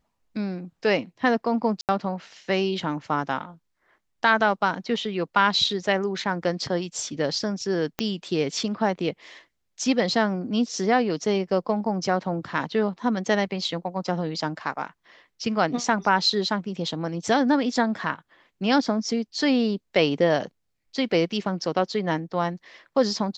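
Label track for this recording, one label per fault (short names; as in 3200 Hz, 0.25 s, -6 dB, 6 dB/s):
1.810000	1.890000	gap 78 ms
7.990000	7.990000	pop -11 dBFS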